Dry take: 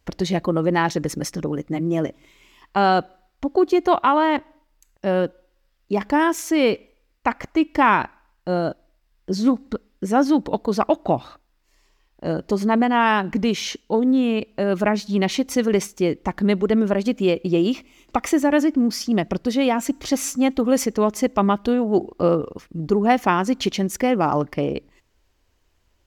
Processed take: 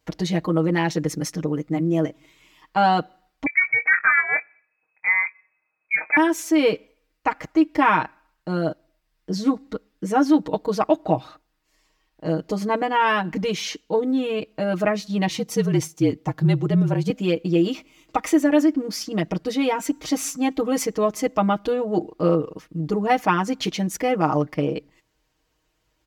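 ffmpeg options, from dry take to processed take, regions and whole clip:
ffmpeg -i in.wav -filter_complex "[0:a]asettb=1/sr,asplit=3[link_01][link_02][link_03];[link_01]atrim=end=3.464[link_04];[link_02]atrim=start=3.46:end=6.17,asetpts=PTS-STARTPTS,afade=type=in:duration=0.004:curve=qsin,afade=type=out:start_time=2.706:duration=0.004:curve=qsin,asplit=2[link_05][link_06];[link_06]adelay=23,volume=-10.5dB[link_07];[link_05][link_07]amix=inputs=2:normalize=0,atrim=end_sample=119511,lowpass=frequency=2200:width_type=q:width=0.5098,lowpass=frequency=2200:width_type=q:width=0.6013,lowpass=frequency=2200:width_type=q:width=0.9,lowpass=frequency=2200:width_type=q:width=2.563,afreqshift=-2600[link_08];[link_03]atrim=start=6.166[link_09];[link_04][link_08]acrossfade=duration=0.004:curve1=hsin:curve2=qsin[link_10];[link_10][link_09]acrossfade=duration=0.004:curve1=qsin:curve2=hsin,asettb=1/sr,asplit=3[link_11][link_12][link_13];[link_11]atrim=end=15.284[link_14];[link_12]atrim=start=15.28:end=17.1,asetpts=PTS-STARTPTS,afade=type=in:duration=0.004:curve=qsin,afade=type=out:start_time=1.816:duration=0.004:curve=qsin,afreqshift=-45,equalizer=frequency=1800:width=0.88:gain=-5[link_15];[link_13]atrim=start=17.096[link_16];[link_14][link_15]acrossfade=duration=0.004:curve1=hsin:curve2=qsin[link_17];[link_17][link_16]acrossfade=duration=0.004:curve1=qsin:curve2=hsin,highpass=47,aecho=1:1:6.4:0.93,volume=-4dB" out.wav

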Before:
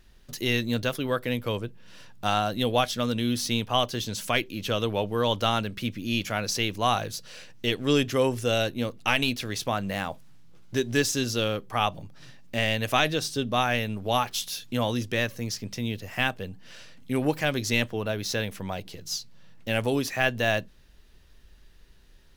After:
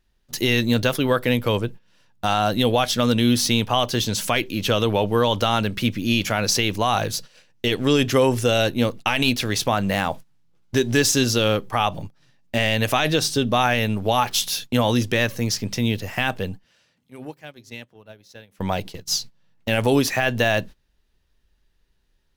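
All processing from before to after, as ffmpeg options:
ffmpeg -i in.wav -filter_complex "[0:a]asettb=1/sr,asplit=3[link_01][link_02][link_03];[link_01]atrim=end=16.644[link_04];[link_02]atrim=start=16.64:end=18.59,asetpts=PTS-STARTPTS,afade=type=in:duration=0.004:curve=qsin,afade=type=out:start_time=1.946:duration=0.004:curve=qsin,bandreject=frequency=133.1:width_type=h:width=4,bandreject=frequency=266.2:width_type=h:width=4,bandreject=frequency=399.3:width_type=h:width=4,bandreject=frequency=532.4:width_type=h:width=4,acompressor=threshold=-44dB:ratio=3:attack=3.2:release=140:knee=1:detection=peak,highpass=frequency=57:width=0.5412,highpass=frequency=57:width=1.3066[link_05];[link_03]atrim=start=18.586[link_06];[link_04][link_05]acrossfade=duration=0.004:curve1=hsin:curve2=qsin[link_07];[link_07][link_06]acrossfade=duration=0.004:curve1=qsin:curve2=hsin,agate=range=-20dB:threshold=-40dB:ratio=16:detection=peak,equalizer=frequency=870:width_type=o:width=0.25:gain=3,alimiter=level_in=15dB:limit=-1dB:release=50:level=0:latency=1,volume=-6.5dB" out.wav

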